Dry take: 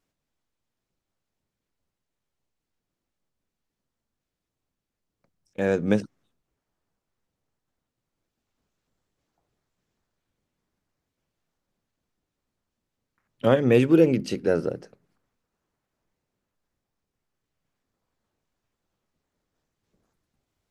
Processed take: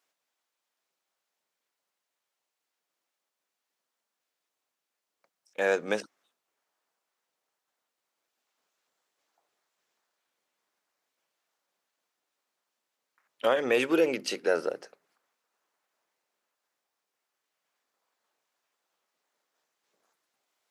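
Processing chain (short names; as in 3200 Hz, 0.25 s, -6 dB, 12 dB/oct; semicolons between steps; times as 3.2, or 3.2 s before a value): HPF 650 Hz 12 dB/oct; limiter -18 dBFS, peak gain reduction 7 dB; gain +4 dB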